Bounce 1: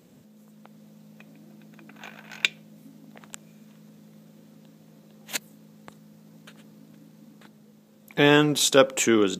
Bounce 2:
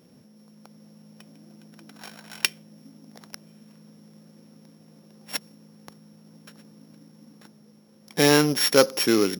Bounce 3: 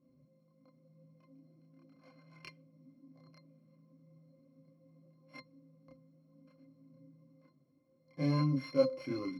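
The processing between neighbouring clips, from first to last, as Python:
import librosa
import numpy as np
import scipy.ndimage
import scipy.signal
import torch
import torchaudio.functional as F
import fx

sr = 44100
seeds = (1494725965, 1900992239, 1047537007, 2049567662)

y1 = np.r_[np.sort(x[:len(x) // 8 * 8].reshape(-1, 8), axis=1).ravel(), x[len(x) // 8 * 8:]]
y2 = fx.chorus_voices(y1, sr, voices=4, hz=0.37, base_ms=29, depth_ms=4.0, mix_pct=55)
y2 = fx.octave_resonator(y2, sr, note='C', decay_s=0.11)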